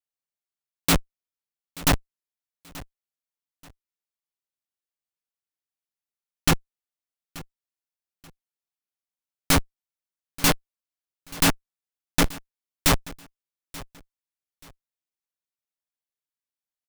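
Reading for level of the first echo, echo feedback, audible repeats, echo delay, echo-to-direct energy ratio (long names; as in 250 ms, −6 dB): −19.5 dB, 28%, 2, 882 ms, −19.0 dB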